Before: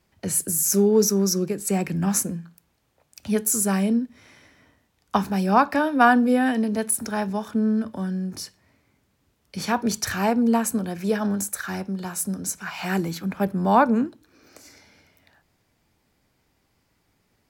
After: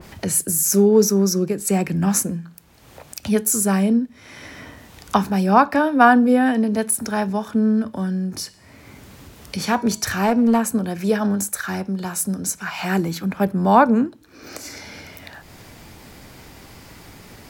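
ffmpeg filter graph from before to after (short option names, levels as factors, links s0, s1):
-filter_complex "[0:a]asettb=1/sr,asplit=3[s0][s1][s2];[s0]atrim=end=8.434[s3];[s1]atrim=start=8.43:end=10.59,asetpts=PTS-STARTPTS,afade=t=in:d=0.004:c=qsin,afade=t=out:st=2.156:d=0.004:c=qsin,bandreject=f=323.1:t=h:w=4,bandreject=f=646.2:t=h:w=4,bandreject=f=969.3:t=h:w=4,bandreject=f=1292.4:t=h:w=4,bandreject=f=1615.5:t=h:w=4,bandreject=f=1938.6:t=h:w=4,bandreject=f=2261.7:t=h:w=4,bandreject=f=2584.8:t=h:w=4,bandreject=f=2907.9:t=h:w=4,bandreject=f=3231:t=h:w=4,bandreject=f=3554.1:t=h:w=4,bandreject=f=3877.2:t=h:w=4,bandreject=f=4200.3:t=h:w=4,bandreject=f=4523.4:t=h:w=4,bandreject=f=4846.5:t=h:w=4,bandreject=f=5169.6:t=h:w=4,bandreject=f=5492.7:t=h:w=4,bandreject=f=5815.8:t=h:w=4,bandreject=f=6138.9:t=h:w=4,bandreject=f=6462:t=h:w=4,bandreject=f=6785.1:t=h:w=4,bandreject=f=7108.2:t=h:w=4,bandreject=f=7431.3:t=h:w=4,bandreject=f=7754.4:t=h:w=4,bandreject=f=8077.5:t=h:w=4,bandreject=f=8400.6:t=h:w=4,bandreject=f=8723.7:t=h:w=4,bandreject=f=9046.8:t=h:w=4,bandreject=f=9369.9:t=h:w=4,bandreject=f=9693:t=h:w=4,bandreject=f=10016.1:t=h:w=4,bandreject=f=10339.2:t=h:w=4,volume=5.62,asoftclip=hard,volume=0.178[s4];[s2]atrim=start=10.586[s5];[s3][s4]acrossfade=d=0.004:c1=hsin:c2=qsin[s6];[s6][s5]acrossfade=d=0.004:c1=qsin:c2=hsin,acompressor=mode=upward:threshold=0.0398:ratio=2.5,adynamicequalizer=threshold=0.0158:dfrequency=1900:dqfactor=0.7:tfrequency=1900:tqfactor=0.7:attack=5:release=100:ratio=0.375:range=2:mode=cutabove:tftype=highshelf,volume=1.58"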